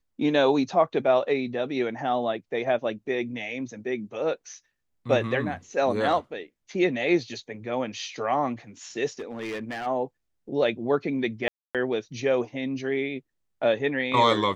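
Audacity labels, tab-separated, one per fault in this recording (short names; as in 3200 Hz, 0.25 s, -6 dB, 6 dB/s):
9.190000	9.870000	clipped -29 dBFS
11.480000	11.750000	gap 0.267 s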